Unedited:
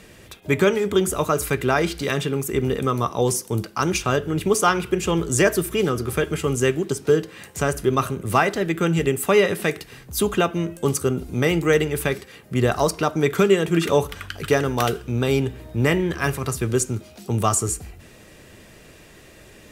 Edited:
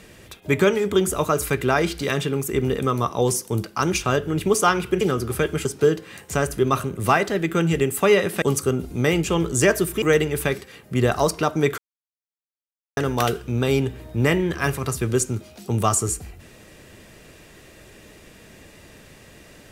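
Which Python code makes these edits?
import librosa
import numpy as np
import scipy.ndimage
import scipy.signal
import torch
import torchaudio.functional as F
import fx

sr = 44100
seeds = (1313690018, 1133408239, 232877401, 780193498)

y = fx.edit(x, sr, fx.move(start_s=5.01, length_s=0.78, to_s=11.62),
    fx.cut(start_s=6.43, length_s=0.48),
    fx.cut(start_s=9.68, length_s=1.12),
    fx.silence(start_s=13.38, length_s=1.19), tone=tone)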